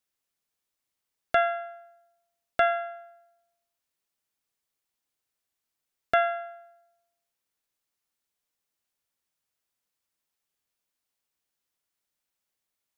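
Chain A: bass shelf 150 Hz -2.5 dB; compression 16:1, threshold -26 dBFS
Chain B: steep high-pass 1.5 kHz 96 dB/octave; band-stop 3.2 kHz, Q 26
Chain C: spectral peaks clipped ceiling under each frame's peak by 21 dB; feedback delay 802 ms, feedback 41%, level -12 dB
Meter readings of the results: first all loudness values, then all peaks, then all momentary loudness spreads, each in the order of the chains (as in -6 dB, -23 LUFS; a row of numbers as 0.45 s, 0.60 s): -34.5 LUFS, -34.0 LUFS, -29.0 LUFS; -11.5 dBFS, -17.5 dBFS, -7.5 dBFS; 17 LU, 14 LU, 20 LU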